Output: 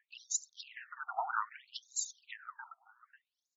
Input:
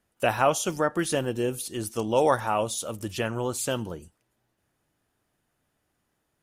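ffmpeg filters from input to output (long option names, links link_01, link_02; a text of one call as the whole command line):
ffmpeg -i in.wav -filter_complex "[0:a]firequalizer=gain_entry='entry(270,0);entry(460,11);entry(940,-5);entry(1500,12);entry(3200,-9);entry(4900,-19);entry(12000,-7)':delay=0.05:min_phase=1,acompressor=threshold=-23dB:ratio=2,aexciter=amount=11.4:drive=3.7:freq=4300,atempo=1.8,aphaser=in_gain=1:out_gain=1:delay=1.1:decay=0.77:speed=1.7:type=sinusoidal,asplit=2[link_01][link_02];[link_02]adelay=543,lowpass=frequency=2500:poles=1,volume=-5.5dB,asplit=2[link_03][link_04];[link_04]adelay=543,lowpass=frequency=2500:poles=1,volume=0.19,asplit=2[link_05][link_06];[link_06]adelay=543,lowpass=frequency=2500:poles=1,volume=0.19[link_07];[link_03][link_05][link_07]amix=inputs=3:normalize=0[link_08];[link_01][link_08]amix=inputs=2:normalize=0,afftfilt=real='re*between(b*sr/1024,960*pow(5300/960,0.5+0.5*sin(2*PI*0.63*pts/sr))/1.41,960*pow(5300/960,0.5+0.5*sin(2*PI*0.63*pts/sr))*1.41)':imag='im*between(b*sr/1024,960*pow(5300/960,0.5+0.5*sin(2*PI*0.63*pts/sr))/1.41,960*pow(5300/960,0.5+0.5*sin(2*PI*0.63*pts/sr))*1.41)':win_size=1024:overlap=0.75,volume=-4dB" out.wav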